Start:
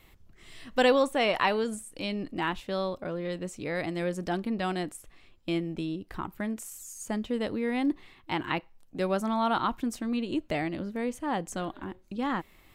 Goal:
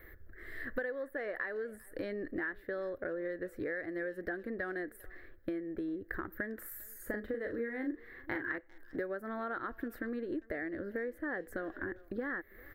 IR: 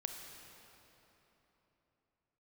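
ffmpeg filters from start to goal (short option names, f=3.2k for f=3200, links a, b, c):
-filter_complex "[0:a]firequalizer=gain_entry='entry(100,0);entry(150,-13);entry(330,3);entry(500,5);entry(900,-13);entry(1700,14);entry(2600,-20);entry(4100,-14);entry(6500,-26);entry(14000,4)':delay=0.05:min_phase=1,acompressor=threshold=-38dB:ratio=16,asettb=1/sr,asplit=3[a][b][c];[a]atrim=end=6.584[d];[b]atrim=start=6.58:end=8.58,asetpts=PTS-STARTPTS,afade=t=in:d=0.004:c=qsin,afade=t=out:st=1.996:d=0.004:c=qsin,asplit=2[e][f];[f]adelay=39,volume=-6dB[g];[e][g]amix=inputs=2:normalize=0,atrim=end_sample=88200[h];[c]atrim=start=8.576[i];[d][h]acrossfade=d=0.004:c1=hsin:c2=qsin[j];[j][i]acrossfade=d=0.004:c1=qsin:c2=hsin,asplit=2[k][l];[l]adelay=400,highpass=300,lowpass=3.4k,asoftclip=type=hard:threshold=-37dB,volume=-22dB[m];[k][m]amix=inputs=2:normalize=0,volume=3.5dB"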